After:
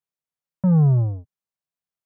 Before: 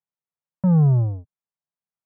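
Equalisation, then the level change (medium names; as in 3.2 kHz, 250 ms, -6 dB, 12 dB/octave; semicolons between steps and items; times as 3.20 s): band-stop 870 Hz, Q 18; 0.0 dB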